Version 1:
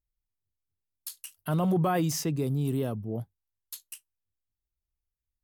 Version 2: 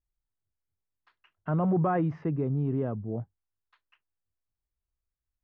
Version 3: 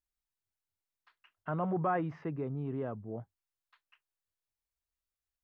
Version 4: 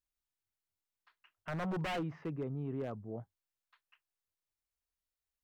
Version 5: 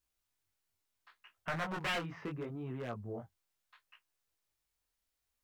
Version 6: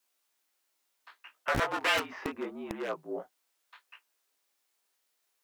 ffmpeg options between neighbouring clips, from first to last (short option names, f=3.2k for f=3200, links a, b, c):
-af "lowpass=f=1.8k:w=0.5412,lowpass=f=1.8k:w=1.3066"
-af "lowshelf=f=450:g=-10.5"
-af "aeval=exprs='0.0355*(abs(mod(val(0)/0.0355+3,4)-2)-1)':c=same,volume=-2dB"
-filter_complex "[0:a]flanger=delay=16:depth=7.4:speed=0.73,acrossover=split=950[a][b];[a]acompressor=threshold=-48dB:ratio=10[c];[c][b]amix=inputs=2:normalize=0,volume=9.5dB"
-filter_complex "[0:a]afreqshift=-51,acrossover=split=260|810|5200[a][b][c][d];[a]acrusher=bits=5:mix=0:aa=0.000001[e];[b]aeval=exprs='(mod(53.1*val(0)+1,2)-1)/53.1':c=same[f];[e][f][c][d]amix=inputs=4:normalize=0,volume=8.5dB"